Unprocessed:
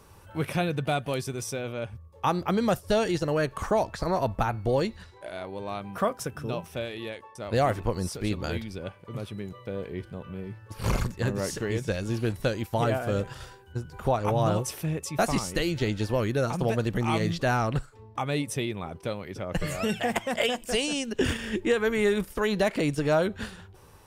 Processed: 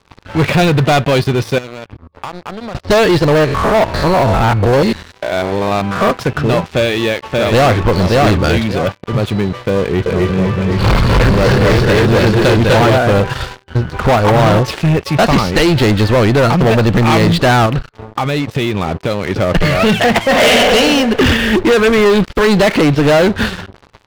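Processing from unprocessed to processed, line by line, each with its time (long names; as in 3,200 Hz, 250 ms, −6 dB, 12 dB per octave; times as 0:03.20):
0:01.58–0:02.75: downward compressor, threshold −45 dBFS
0:03.35–0:06.11: spectrum averaged block by block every 100 ms
0:06.67–0:07.78: delay throw 580 ms, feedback 15%, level −3.5 dB
0:08.56–0:09.13: high-pass filter 86 Hz
0:09.81–0:12.98: multi-tap delay 248/250/264/270/479/767 ms −5/−4.5/−9/−5.5/−9/−5.5 dB
0:17.66–0:19.31: downward compressor, threshold −33 dBFS
0:20.24–0:20.71: thrown reverb, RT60 1.5 s, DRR −4 dB
whole clip: Chebyshev low-pass filter 4,400 Hz, order 4; leveller curve on the samples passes 5; level +4.5 dB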